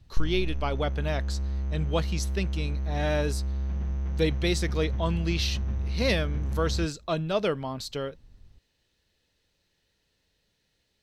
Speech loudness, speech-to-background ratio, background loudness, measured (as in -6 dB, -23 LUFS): -30.5 LUFS, 1.5 dB, -32.0 LUFS